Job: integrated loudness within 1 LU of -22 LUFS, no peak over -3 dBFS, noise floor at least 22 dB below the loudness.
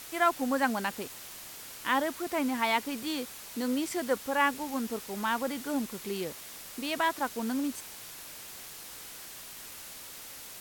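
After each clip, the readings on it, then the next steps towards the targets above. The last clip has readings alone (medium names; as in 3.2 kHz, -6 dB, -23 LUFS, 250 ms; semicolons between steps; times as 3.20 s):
noise floor -46 dBFS; noise floor target -55 dBFS; loudness -32.5 LUFS; peak level -13.0 dBFS; loudness target -22.0 LUFS
-> noise print and reduce 9 dB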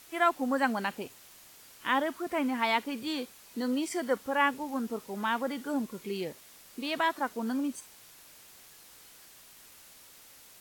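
noise floor -55 dBFS; loudness -31.5 LUFS; peak level -13.0 dBFS; loudness target -22.0 LUFS
-> trim +9.5 dB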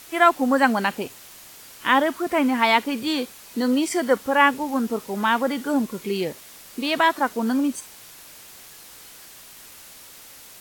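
loudness -22.0 LUFS; peak level -3.5 dBFS; noise floor -45 dBFS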